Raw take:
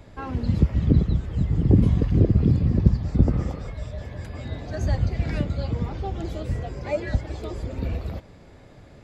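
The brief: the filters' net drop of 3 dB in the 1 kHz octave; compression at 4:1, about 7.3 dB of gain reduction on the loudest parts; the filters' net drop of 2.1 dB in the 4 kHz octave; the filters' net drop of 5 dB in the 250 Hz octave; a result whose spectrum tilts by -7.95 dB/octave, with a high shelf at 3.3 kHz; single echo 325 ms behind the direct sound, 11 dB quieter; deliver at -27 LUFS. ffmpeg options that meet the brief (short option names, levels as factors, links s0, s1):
-af "equalizer=f=250:t=o:g=-7.5,equalizer=f=1000:t=o:g=-4,highshelf=f=3300:g=8.5,equalizer=f=4000:t=o:g=-8.5,acompressor=threshold=0.0794:ratio=4,aecho=1:1:325:0.282,volume=1.41"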